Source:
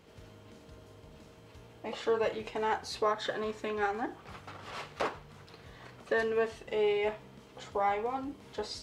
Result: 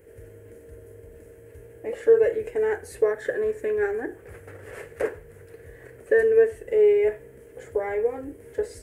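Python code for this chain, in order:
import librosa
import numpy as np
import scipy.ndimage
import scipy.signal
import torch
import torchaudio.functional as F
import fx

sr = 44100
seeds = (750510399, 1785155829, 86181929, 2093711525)

y = fx.curve_eq(x, sr, hz=(100.0, 190.0, 460.0, 770.0, 1200.0, 1700.0, 3800.0, 5500.0, 9400.0), db=(0, -14, 6, -13, -18, 0, -24, -17, 4))
y = y * librosa.db_to_amplitude(7.5)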